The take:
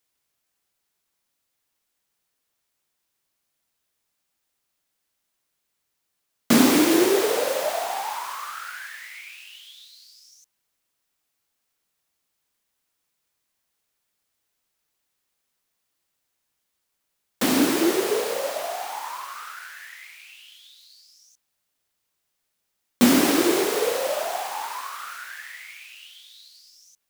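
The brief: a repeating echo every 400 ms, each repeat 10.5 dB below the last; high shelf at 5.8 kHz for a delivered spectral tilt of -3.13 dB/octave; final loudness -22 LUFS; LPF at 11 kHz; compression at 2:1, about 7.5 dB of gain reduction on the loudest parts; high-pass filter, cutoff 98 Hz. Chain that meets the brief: high-pass 98 Hz; low-pass 11 kHz; treble shelf 5.8 kHz -4 dB; compression 2:1, threshold -26 dBFS; feedback delay 400 ms, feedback 30%, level -10.5 dB; trim +6.5 dB

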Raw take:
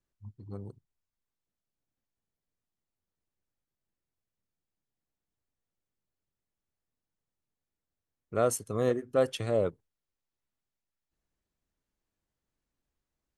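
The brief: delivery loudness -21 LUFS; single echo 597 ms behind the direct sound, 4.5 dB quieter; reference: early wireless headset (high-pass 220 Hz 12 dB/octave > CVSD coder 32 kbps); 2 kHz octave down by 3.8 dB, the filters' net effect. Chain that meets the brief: high-pass 220 Hz 12 dB/octave; peaking EQ 2 kHz -5.5 dB; delay 597 ms -4.5 dB; CVSD coder 32 kbps; trim +10 dB

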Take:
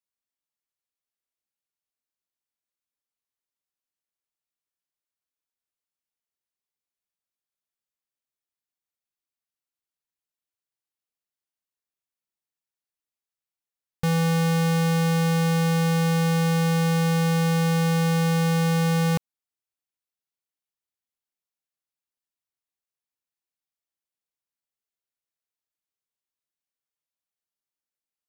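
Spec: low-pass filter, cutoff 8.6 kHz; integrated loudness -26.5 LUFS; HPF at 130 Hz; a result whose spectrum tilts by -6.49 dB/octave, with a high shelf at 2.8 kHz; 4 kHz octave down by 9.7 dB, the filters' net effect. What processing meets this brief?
high-pass 130 Hz; low-pass 8.6 kHz; treble shelf 2.8 kHz -8.5 dB; peaking EQ 4 kHz -6 dB; trim -2.5 dB

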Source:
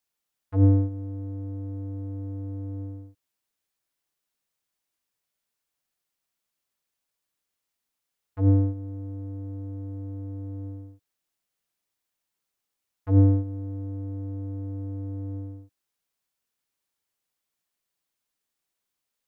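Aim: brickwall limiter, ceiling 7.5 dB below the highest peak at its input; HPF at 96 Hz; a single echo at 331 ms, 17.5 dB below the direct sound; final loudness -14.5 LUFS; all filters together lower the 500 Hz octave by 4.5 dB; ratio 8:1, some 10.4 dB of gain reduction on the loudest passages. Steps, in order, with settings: high-pass 96 Hz; peaking EQ 500 Hz -5 dB; compression 8:1, threshold -26 dBFS; peak limiter -28 dBFS; delay 331 ms -17.5 dB; trim +24.5 dB

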